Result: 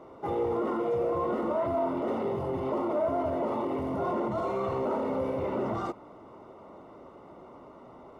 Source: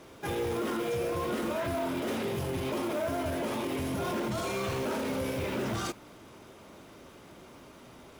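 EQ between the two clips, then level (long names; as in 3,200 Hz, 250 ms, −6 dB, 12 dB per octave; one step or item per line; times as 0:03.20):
Savitzky-Golay smoothing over 65 samples
low-shelf EQ 290 Hz −11.5 dB
+7.0 dB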